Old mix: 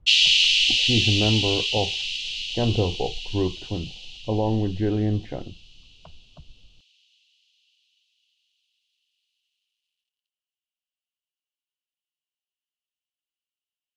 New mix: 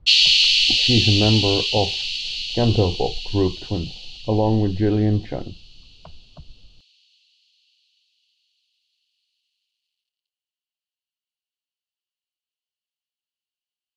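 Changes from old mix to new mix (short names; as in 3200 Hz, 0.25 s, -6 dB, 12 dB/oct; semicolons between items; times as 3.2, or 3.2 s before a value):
speech +4.5 dB; master: add bell 4400 Hz +9.5 dB 0.29 oct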